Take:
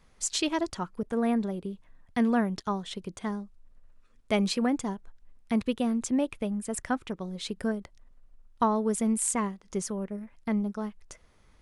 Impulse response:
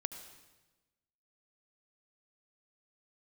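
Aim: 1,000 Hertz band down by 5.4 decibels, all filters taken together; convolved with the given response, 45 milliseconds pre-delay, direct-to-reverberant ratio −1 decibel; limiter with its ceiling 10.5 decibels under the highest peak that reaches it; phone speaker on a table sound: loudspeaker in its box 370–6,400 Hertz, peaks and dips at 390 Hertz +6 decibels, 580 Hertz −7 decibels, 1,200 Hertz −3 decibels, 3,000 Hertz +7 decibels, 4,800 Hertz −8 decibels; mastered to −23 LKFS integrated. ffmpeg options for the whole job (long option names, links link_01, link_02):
-filter_complex "[0:a]equalizer=frequency=1000:width_type=o:gain=-5,alimiter=limit=-23.5dB:level=0:latency=1,asplit=2[link_01][link_02];[1:a]atrim=start_sample=2205,adelay=45[link_03];[link_02][link_03]afir=irnorm=-1:irlink=0,volume=1.5dB[link_04];[link_01][link_04]amix=inputs=2:normalize=0,highpass=frequency=370:width=0.5412,highpass=frequency=370:width=1.3066,equalizer=frequency=390:width_type=q:width=4:gain=6,equalizer=frequency=580:width_type=q:width=4:gain=-7,equalizer=frequency=1200:width_type=q:width=4:gain=-3,equalizer=frequency=3000:width_type=q:width=4:gain=7,equalizer=frequency=4800:width_type=q:width=4:gain=-8,lowpass=frequency=6400:width=0.5412,lowpass=frequency=6400:width=1.3066,volume=13dB"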